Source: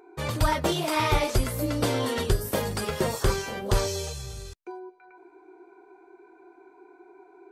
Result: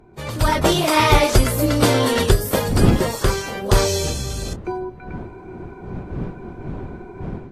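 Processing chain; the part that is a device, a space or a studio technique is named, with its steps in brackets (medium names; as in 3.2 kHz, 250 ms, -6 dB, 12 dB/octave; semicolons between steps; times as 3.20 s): smartphone video outdoors (wind noise 230 Hz; level rider gain up to 14 dB; trim -1 dB; AAC 48 kbps 32 kHz)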